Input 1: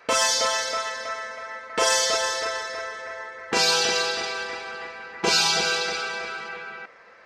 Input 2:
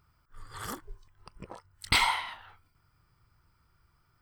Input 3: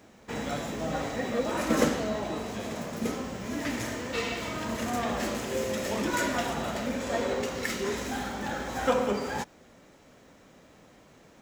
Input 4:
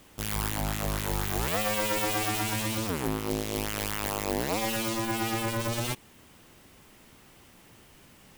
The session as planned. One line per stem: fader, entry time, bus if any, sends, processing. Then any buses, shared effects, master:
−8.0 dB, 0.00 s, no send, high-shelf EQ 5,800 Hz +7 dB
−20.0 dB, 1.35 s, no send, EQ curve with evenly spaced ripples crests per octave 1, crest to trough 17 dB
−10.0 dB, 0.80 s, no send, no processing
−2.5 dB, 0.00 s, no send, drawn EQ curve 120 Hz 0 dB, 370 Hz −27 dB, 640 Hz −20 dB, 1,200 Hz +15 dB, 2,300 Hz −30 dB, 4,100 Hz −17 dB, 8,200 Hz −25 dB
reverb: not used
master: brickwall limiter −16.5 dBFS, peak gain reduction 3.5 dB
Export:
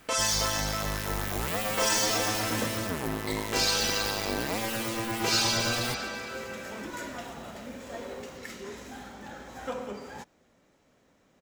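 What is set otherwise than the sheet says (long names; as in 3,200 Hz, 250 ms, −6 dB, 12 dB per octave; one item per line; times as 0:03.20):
stem 4: missing drawn EQ curve 120 Hz 0 dB, 370 Hz −27 dB, 640 Hz −20 dB, 1,200 Hz +15 dB, 2,300 Hz −30 dB, 4,100 Hz −17 dB, 8,200 Hz −25 dB
master: missing brickwall limiter −16.5 dBFS, peak gain reduction 3.5 dB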